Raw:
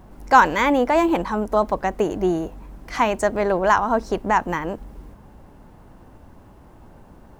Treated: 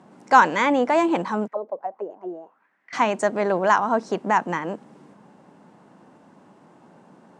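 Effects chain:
0:01.47–0:02.93: envelope filter 450–2,300 Hz, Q 5.6, down, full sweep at −15.5 dBFS
elliptic band-pass filter 170–8,500 Hz, stop band 50 dB
level −1 dB

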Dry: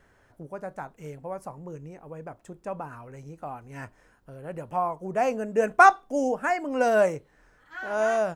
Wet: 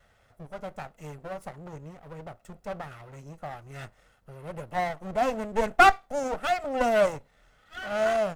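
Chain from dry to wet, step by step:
lower of the sound and its delayed copy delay 1.5 ms

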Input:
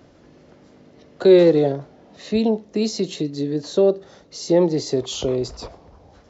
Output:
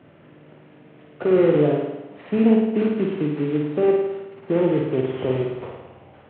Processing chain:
variable-slope delta modulation 16 kbit/s
high-pass filter 110 Hz 24 dB per octave
low-shelf EQ 140 Hz +7.5 dB
brickwall limiter −11.5 dBFS, peak gain reduction 6.5 dB
on a send: flutter between parallel walls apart 9.2 metres, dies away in 1 s
on the sum: level −1.5 dB

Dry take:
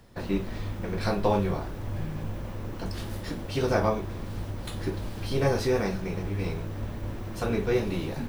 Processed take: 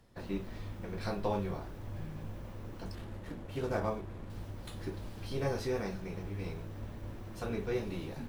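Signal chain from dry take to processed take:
0:02.95–0:04.30: running median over 9 samples
level −9 dB
Ogg Vorbis 128 kbit/s 44,100 Hz

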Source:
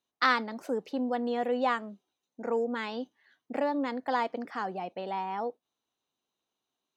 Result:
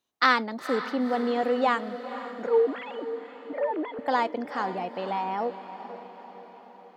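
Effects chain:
0:02.47–0:03.99: three sine waves on the formant tracks
feedback delay with all-pass diffusion 492 ms, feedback 57%, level −12 dB
level +4 dB

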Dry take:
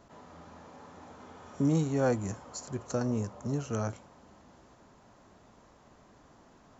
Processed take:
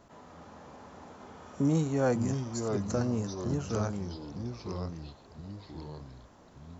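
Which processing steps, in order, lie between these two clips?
delay with pitch and tempo change per echo 250 ms, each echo −3 semitones, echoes 3, each echo −6 dB

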